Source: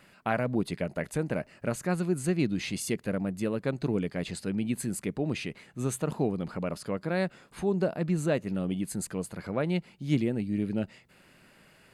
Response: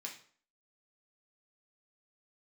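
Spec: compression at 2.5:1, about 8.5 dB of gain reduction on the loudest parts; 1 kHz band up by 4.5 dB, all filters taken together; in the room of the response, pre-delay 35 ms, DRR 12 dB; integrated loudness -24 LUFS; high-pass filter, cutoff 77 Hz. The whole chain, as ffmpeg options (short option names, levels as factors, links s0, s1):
-filter_complex "[0:a]highpass=77,equalizer=f=1000:t=o:g=6.5,acompressor=threshold=0.02:ratio=2.5,asplit=2[s0][s1];[1:a]atrim=start_sample=2205,adelay=35[s2];[s1][s2]afir=irnorm=-1:irlink=0,volume=0.316[s3];[s0][s3]amix=inputs=2:normalize=0,volume=4.47"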